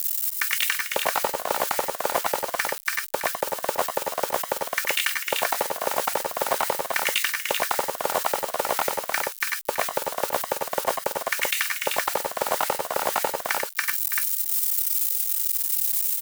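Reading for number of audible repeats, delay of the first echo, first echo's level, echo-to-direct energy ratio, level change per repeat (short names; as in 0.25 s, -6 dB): 3, 93 ms, -6.0 dB, -1.5 dB, no steady repeat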